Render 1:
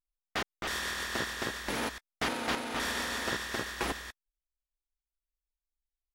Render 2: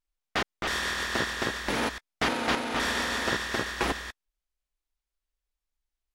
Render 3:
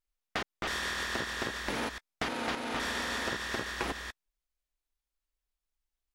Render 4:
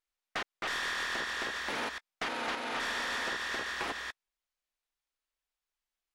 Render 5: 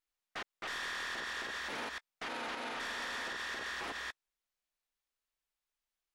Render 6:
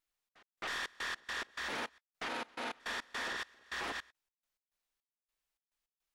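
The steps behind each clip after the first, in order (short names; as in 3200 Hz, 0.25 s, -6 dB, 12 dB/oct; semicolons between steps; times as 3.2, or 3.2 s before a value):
high shelf 10000 Hz -10.5 dB; gain +5.5 dB
compressor, threshold -28 dBFS, peak gain reduction 7 dB; gain -2 dB
overdrive pedal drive 17 dB, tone 4400 Hz, clips at -15 dBFS; gain -8 dB
limiter -31.5 dBFS, peak gain reduction 7.5 dB; gain -1.5 dB
step gate "xx..xx.x.x." 105 bpm -24 dB; gain +1.5 dB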